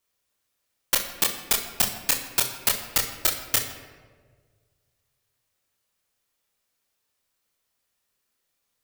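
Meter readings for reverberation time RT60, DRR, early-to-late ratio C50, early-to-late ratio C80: 1.6 s, 0.5 dB, 7.0 dB, 9.0 dB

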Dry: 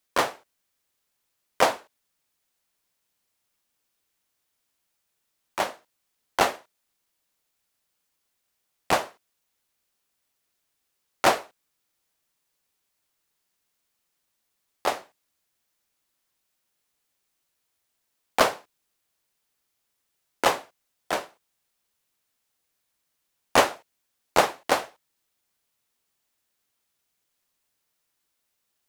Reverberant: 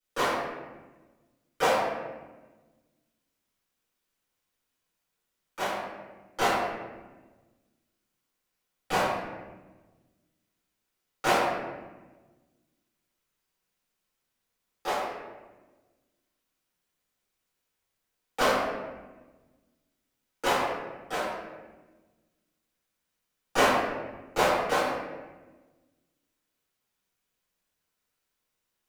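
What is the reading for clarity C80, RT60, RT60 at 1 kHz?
2.0 dB, 1.2 s, 1.1 s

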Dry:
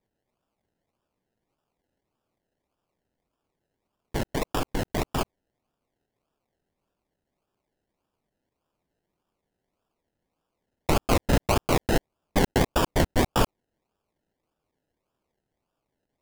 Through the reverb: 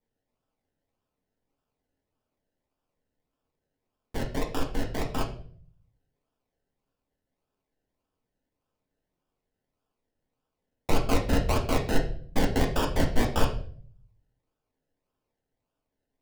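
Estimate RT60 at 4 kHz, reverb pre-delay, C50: 0.45 s, 4 ms, 9.5 dB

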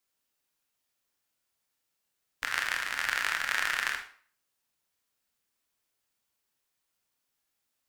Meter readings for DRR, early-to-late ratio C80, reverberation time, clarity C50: 3.0 dB, 12.0 dB, 0.50 s, 7.5 dB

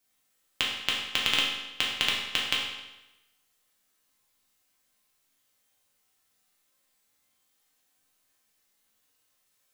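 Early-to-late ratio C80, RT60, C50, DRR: 4.5 dB, 1.0 s, 2.0 dB, -4.5 dB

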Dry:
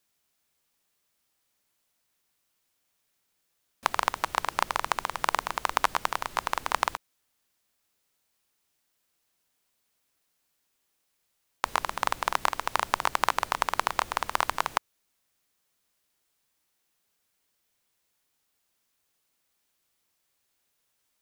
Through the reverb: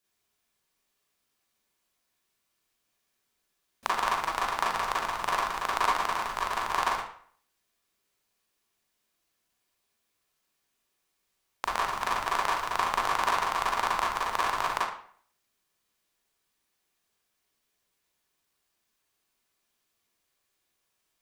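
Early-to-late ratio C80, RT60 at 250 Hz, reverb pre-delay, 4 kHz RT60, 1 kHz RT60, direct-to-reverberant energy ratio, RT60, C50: 7.0 dB, 0.55 s, 35 ms, 0.45 s, 0.55 s, -5.5 dB, 0.55 s, 0.5 dB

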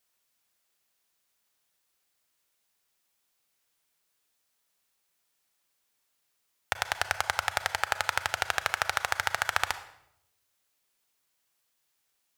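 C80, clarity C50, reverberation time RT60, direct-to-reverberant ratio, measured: 15.5 dB, 13.0 dB, 0.80 s, 11.5 dB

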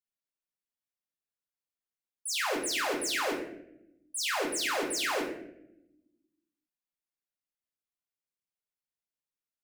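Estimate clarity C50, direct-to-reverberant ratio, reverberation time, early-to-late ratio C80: 5.5 dB, -2.0 dB, 0.80 s, 8.0 dB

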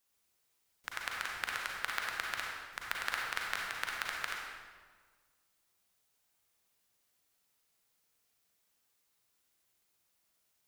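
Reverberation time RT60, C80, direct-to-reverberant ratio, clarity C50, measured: 1.6 s, 1.5 dB, -2.0 dB, -1.0 dB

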